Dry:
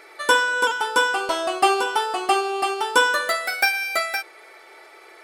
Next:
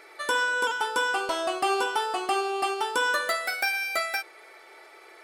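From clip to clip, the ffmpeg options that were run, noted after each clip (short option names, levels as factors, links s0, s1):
-af "alimiter=limit=0.266:level=0:latency=1:release=97,volume=0.668"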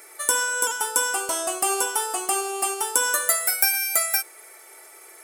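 -af "aexciter=amount=12.7:drive=1.3:freq=6100,volume=0.891"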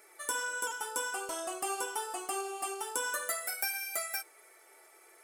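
-af "highshelf=f=4600:g=-6,flanger=delay=4.7:depth=7.2:regen=-43:speed=0.5:shape=triangular,volume=0.531"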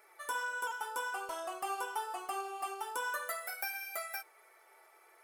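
-af "equalizer=f=250:t=o:w=1:g=-9,equalizer=f=1000:t=o:w=1:g=5,equalizer=f=8000:t=o:w=1:g=-10,volume=0.708"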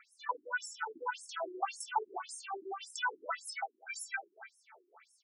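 -filter_complex "[0:a]asplit=2[s0][s1];[s1]adelay=274.1,volume=0.282,highshelf=f=4000:g=-6.17[s2];[s0][s2]amix=inputs=2:normalize=0,afftfilt=real='re*between(b*sr/1024,260*pow(7700/260,0.5+0.5*sin(2*PI*1.8*pts/sr))/1.41,260*pow(7700/260,0.5+0.5*sin(2*PI*1.8*pts/sr))*1.41)':imag='im*between(b*sr/1024,260*pow(7700/260,0.5+0.5*sin(2*PI*1.8*pts/sr))/1.41,260*pow(7700/260,0.5+0.5*sin(2*PI*1.8*pts/sr))*1.41)':win_size=1024:overlap=0.75,volume=2.51"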